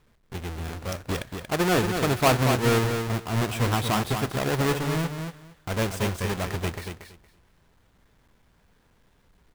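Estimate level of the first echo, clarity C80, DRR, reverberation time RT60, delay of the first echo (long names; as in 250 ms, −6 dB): −6.5 dB, no reverb audible, no reverb audible, no reverb audible, 232 ms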